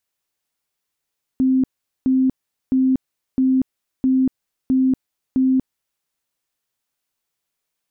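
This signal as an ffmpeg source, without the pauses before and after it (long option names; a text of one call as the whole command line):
ffmpeg -f lavfi -i "aevalsrc='0.224*sin(2*PI*261*mod(t,0.66))*lt(mod(t,0.66),62/261)':duration=4.62:sample_rate=44100" out.wav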